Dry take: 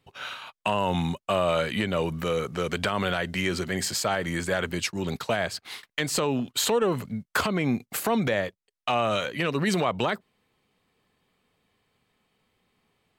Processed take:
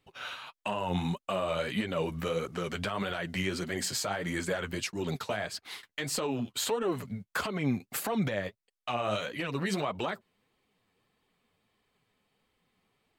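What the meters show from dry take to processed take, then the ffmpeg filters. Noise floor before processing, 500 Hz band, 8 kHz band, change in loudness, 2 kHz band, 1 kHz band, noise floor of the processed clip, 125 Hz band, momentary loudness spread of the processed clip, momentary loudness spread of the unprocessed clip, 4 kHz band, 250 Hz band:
-80 dBFS, -6.5 dB, -5.0 dB, -6.0 dB, -6.5 dB, -7.0 dB, -84 dBFS, -5.0 dB, 6 LU, 7 LU, -6.0 dB, -5.0 dB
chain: -af "alimiter=limit=-18dB:level=0:latency=1:release=99,flanger=delay=2.1:depth=9.7:regen=25:speed=1.6:shape=triangular"

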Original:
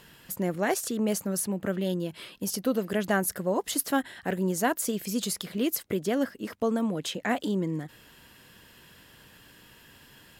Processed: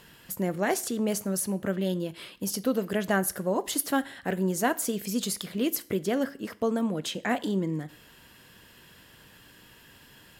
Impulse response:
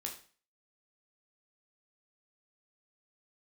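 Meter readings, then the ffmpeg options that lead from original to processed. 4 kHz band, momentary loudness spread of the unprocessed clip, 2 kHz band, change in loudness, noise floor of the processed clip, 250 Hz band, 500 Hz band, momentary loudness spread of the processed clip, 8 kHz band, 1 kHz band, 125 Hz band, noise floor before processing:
0.0 dB, 6 LU, 0.0 dB, 0.0 dB, -55 dBFS, 0.0 dB, 0.0 dB, 6 LU, 0.0 dB, 0.0 dB, +0.5 dB, -55 dBFS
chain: -filter_complex "[0:a]asplit=2[a][b];[1:a]atrim=start_sample=2205,asetrate=37485,aresample=44100[c];[b][c]afir=irnorm=-1:irlink=0,volume=-11.5dB[d];[a][d]amix=inputs=2:normalize=0,volume=-1.5dB"

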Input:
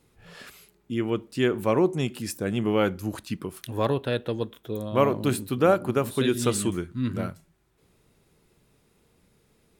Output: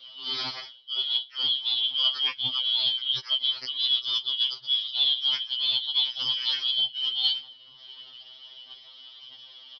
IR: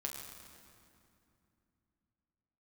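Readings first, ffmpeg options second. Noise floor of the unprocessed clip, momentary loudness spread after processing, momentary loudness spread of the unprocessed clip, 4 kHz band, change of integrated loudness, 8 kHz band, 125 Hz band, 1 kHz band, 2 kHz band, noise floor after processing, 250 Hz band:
-66 dBFS, 21 LU, 11 LU, +19.0 dB, +2.0 dB, under -15 dB, under -25 dB, -14.0 dB, -6.0 dB, -51 dBFS, under -25 dB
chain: -filter_complex "[0:a]afftfilt=real='real(if(lt(b,272),68*(eq(floor(b/68),0)*1+eq(floor(b/68),1)*3+eq(floor(b/68),2)*0+eq(floor(b/68),3)*2)+mod(b,68),b),0)':imag='imag(if(lt(b,272),68*(eq(floor(b/68),0)*1+eq(floor(b/68),1)*3+eq(floor(b/68),2)*0+eq(floor(b/68),3)*2)+mod(b,68),b),0)':win_size=2048:overlap=0.75,aphaser=in_gain=1:out_gain=1:delay=3.4:decay=0.5:speed=1.6:type=sinusoidal,equalizer=f=94:t=o:w=1:g=10.5,tremolo=f=79:d=1,aeval=exprs='0.562*sin(PI/2*2.82*val(0)/0.562)':c=same,aresample=11025,aresample=44100,aemphasis=mode=production:type=riaa,areverse,acompressor=threshold=-23dB:ratio=16,areverse,asplit=2[a][b];[b]adelay=1458,volume=-19dB,highshelf=f=4k:g=-32.8[c];[a][c]amix=inputs=2:normalize=0,afftfilt=real='re*2.45*eq(mod(b,6),0)':imag='im*2.45*eq(mod(b,6),0)':win_size=2048:overlap=0.75,volume=4dB"

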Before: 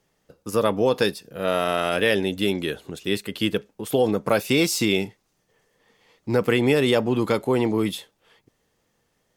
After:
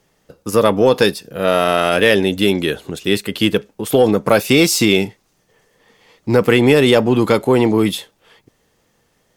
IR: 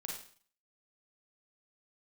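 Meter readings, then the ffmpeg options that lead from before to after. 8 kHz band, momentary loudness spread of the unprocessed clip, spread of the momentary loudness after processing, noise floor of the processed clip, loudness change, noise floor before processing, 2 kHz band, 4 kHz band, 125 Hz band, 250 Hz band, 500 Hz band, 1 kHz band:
+8.0 dB, 9 LU, 9 LU, -63 dBFS, +8.0 dB, -71 dBFS, +7.5 dB, +7.5 dB, +8.0 dB, +8.0 dB, +8.0 dB, +7.5 dB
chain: -af "acontrast=47,volume=2.5dB"

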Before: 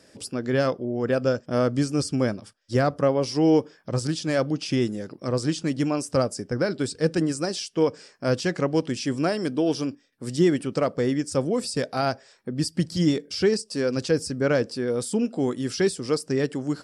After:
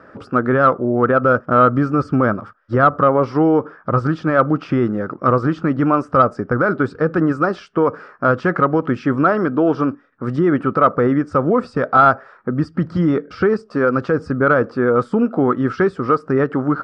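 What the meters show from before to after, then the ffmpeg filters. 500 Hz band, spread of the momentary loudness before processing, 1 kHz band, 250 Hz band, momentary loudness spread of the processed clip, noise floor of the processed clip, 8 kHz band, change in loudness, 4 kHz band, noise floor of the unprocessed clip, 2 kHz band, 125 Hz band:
+6.5 dB, 6 LU, +16.0 dB, +7.0 dB, 6 LU, -47 dBFS, under -20 dB, +8.0 dB, n/a, -58 dBFS, +11.0 dB, +6.5 dB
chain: -af "alimiter=limit=-17.5dB:level=0:latency=1:release=86,lowpass=f=1.3k:t=q:w=6.9,acontrast=39,volume=4dB"

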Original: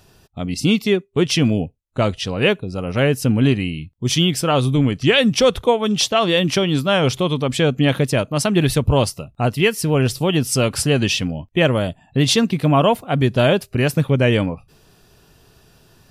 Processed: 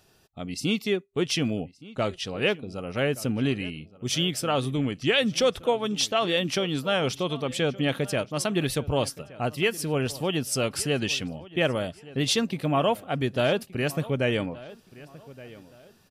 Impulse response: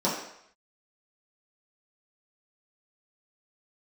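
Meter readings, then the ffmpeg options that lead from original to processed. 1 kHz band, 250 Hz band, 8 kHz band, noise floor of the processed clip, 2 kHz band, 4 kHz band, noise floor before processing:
-8.0 dB, -10.0 dB, -7.0 dB, -59 dBFS, -7.0 dB, -7.0 dB, -55 dBFS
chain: -filter_complex "[0:a]lowshelf=f=160:g=-9,bandreject=f=1k:w=13,asplit=2[a][b];[b]adelay=1171,lowpass=f=3.3k:p=1,volume=-19dB,asplit=2[c][d];[d]adelay=1171,lowpass=f=3.3k:p=1,volume=0.31,asplit=2[e][f];[f]adelay=1171,lowpass=f=3.3k:p=1,volume=0.31[g];[a][c][e][g]amix=inputs=4:normalize=0,volume=-7dB"

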